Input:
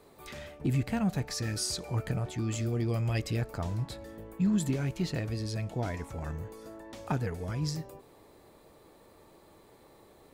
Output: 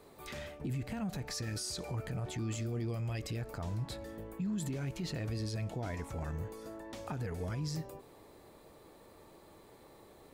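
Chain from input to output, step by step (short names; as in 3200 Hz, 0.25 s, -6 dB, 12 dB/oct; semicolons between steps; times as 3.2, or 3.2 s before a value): limiter -30 dBFS, peak gain reduction 11 dB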